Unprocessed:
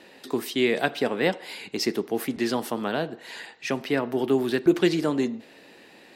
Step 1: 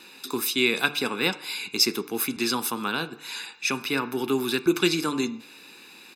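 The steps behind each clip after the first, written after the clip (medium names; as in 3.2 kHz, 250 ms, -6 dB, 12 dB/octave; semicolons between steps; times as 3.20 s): tilt EQ +2.5 dB/octave; comb 0.8 ms, depth 78%; de-hum 146.8 Hz, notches 19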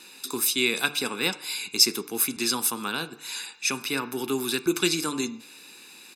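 peaking EQ 8.9 kHz +10 dB 1.5 oct; trim -3 dB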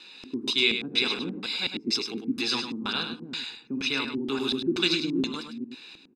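chunks repeated in reverse 209 ms, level -4.5 dB; LFO low-pass square 2.1 Hz 270–3800 Hz; delay 102 ms -8 dB; trim -4 dB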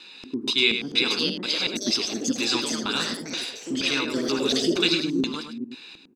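ever faster or slower copies 728 ms, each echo +4 st, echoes 3, each echo -6 dB; trim +2.5 dB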